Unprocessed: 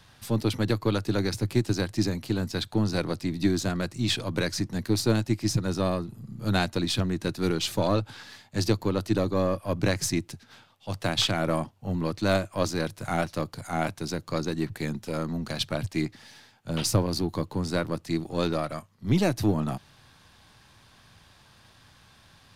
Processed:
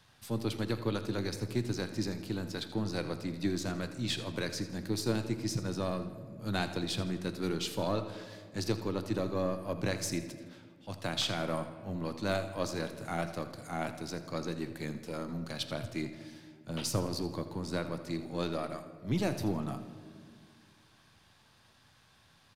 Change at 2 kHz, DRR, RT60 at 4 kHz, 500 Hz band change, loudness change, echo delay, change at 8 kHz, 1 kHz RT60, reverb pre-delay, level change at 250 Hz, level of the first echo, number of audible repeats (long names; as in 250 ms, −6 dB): −7.0 dB, 8.5 dB, 1.0 s, −7.0 dB, −7.5 dB, 82 ms, −7.0 dB, 1.6 s, 5 ms, −7.5 dB, −14.5 dB, 2